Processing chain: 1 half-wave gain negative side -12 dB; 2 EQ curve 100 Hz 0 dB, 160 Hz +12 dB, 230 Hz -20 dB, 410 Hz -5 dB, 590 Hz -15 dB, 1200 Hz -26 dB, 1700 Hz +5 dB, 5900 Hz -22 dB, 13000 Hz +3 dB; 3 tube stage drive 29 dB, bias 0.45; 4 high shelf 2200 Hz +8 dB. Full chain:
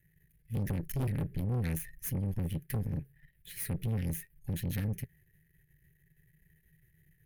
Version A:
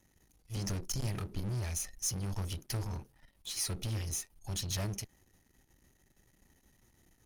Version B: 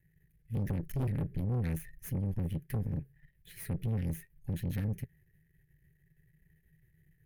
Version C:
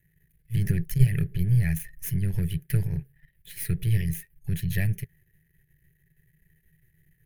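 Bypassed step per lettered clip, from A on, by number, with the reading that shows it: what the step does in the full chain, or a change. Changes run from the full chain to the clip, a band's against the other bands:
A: 2, 4 kHz band +13.5 dB; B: 4, 8 kHz band -7.0 dB; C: 3, crest factor change +6.5 dB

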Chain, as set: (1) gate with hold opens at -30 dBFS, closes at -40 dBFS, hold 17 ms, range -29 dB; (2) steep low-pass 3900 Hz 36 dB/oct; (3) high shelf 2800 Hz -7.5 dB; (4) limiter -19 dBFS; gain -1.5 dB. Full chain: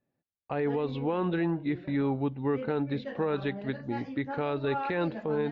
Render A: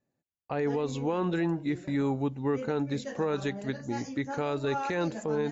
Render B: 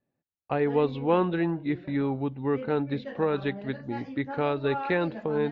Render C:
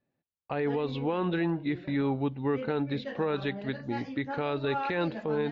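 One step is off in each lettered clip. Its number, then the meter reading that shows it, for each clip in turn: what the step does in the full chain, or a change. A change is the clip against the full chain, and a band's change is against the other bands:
2, 4 kHz band +2.0 dB; 4, crest factor change +7.0 dB; 3, 4 kHz band +4.5 dB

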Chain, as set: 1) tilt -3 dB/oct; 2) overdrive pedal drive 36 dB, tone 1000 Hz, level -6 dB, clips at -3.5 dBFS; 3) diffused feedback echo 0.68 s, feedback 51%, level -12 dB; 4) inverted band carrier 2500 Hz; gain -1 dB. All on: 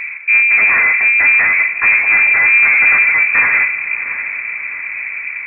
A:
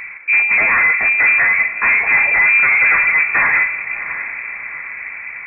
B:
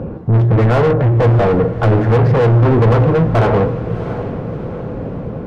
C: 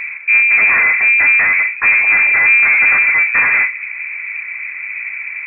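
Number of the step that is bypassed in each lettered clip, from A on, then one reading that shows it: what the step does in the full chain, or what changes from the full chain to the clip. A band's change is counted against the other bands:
1, momentary loudness spread change +2 LU; 4, crest factor change -1.5 dB; 3, momentary loudness spread change +1 LU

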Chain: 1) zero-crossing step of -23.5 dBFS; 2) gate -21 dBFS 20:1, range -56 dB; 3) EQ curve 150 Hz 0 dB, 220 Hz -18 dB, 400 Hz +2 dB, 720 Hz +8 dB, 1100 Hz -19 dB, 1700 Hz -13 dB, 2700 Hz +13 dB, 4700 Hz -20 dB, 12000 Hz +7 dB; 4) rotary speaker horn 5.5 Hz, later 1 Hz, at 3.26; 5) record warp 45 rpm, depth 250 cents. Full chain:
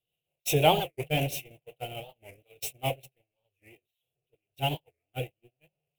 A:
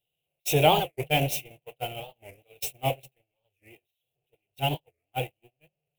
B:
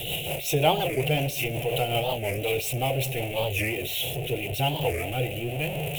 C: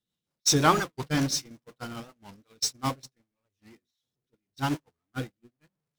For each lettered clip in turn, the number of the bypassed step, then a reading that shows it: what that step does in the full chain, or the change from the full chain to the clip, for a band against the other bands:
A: 4, loudness change +2.0 LU; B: 2, momentary loudness spread change -12 LU; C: 3, loudness change +3.0 LU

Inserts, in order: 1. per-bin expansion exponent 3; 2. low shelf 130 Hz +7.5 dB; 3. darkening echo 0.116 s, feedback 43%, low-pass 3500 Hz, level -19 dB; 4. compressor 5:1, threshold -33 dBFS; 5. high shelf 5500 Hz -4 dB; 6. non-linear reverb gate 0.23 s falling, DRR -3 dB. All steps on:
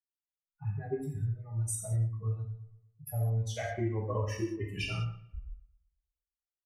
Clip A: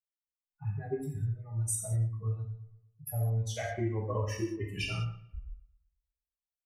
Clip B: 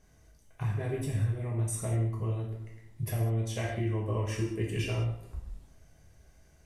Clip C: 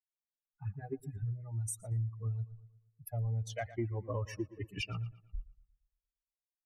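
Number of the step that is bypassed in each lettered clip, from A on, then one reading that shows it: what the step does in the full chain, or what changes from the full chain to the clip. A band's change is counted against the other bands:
5, 8 kHz band +3.0 dB; 1, loudness change +2.0 LU; 6, momentary loudness spread change -2 LU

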